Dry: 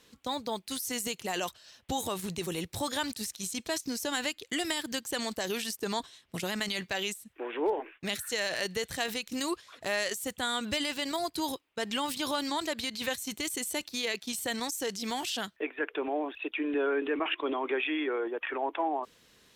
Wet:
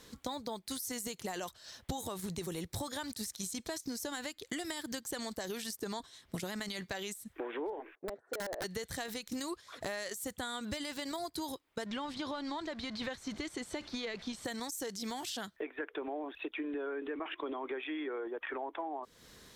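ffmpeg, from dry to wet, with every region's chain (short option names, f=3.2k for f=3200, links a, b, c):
-filter_complex "[0:a]asettb=1/sr,asplit=3[a][b][c];[a]atrim=end=7.954[d];[b]atrim=start=7.95:end=8.64,asetpts=PTS-STARTPTS,afade=t=in:d=0.004:c=qsin,afade=t=out:st=0.686:d=0.004:c=qsin,asuperpass=centerf=510:order=4:qfactor=1.4,aeval=exprs='(mod(37.6*val(0)+1,2)-1)/37.6':c=same[e];[c]atrim=start=8.636[f];[d][e]acrossfade=d=0.004:c1=hsin:c2=qsin[g];[g][f]acrossfade=d=0.004:c1=qsin:c2=hsin,asettb=1/sr,asplit=3[h][i][j];[h]atrim=end=11.864[k];[i]atrim=start=11.86:end=14.45,asetpts=PTS-STARTPTS,afade=t=in:d=0.004:c=qsin,afade=t=out:st=2.586:d=0.004:c=qsin,aeval=exprs='val(0)+0.5*0.01*sgn(val(0))':c=same,lowpass=3.7k[l];[j]atrim=start=14.446[m];[k][l]acrossfade=d=0.004:c1=hsin:c2=qsin[n];[n][m]acrossfade=d=0.004:c1=qsin:c2=hsin,equalizer=f=2.7k:w=3.2:g=-7.5,acompressor=threshold=-43dB:ratio=6,lowshelf=f=96:g=6,volume=5.5dB"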